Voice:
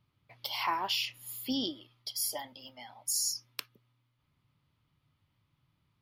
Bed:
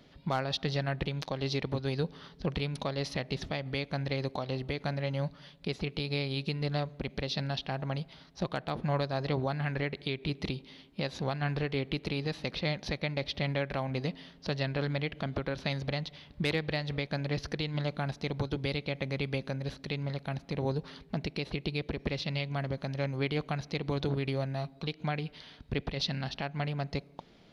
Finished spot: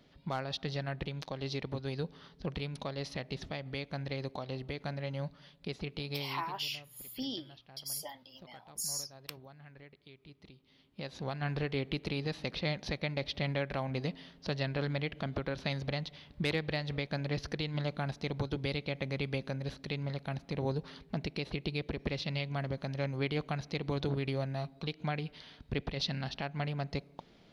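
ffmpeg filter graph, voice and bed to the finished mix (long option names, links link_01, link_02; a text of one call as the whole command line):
ffmpeg -i stem1.wav -i stem2.wav -filter_complex "[0:a]adelay=5700,volume=-5.5dB[link_01];[1:a]volume=14.5dB,afade=type=out:start_time=6.09:duration=0.47:silence=0.149624,afade=type=in:start_time=10.58:duration=1.03:silence=0.105925[link_02];[link_01][link_02]amix=inputs=2:normalize=0" out.wav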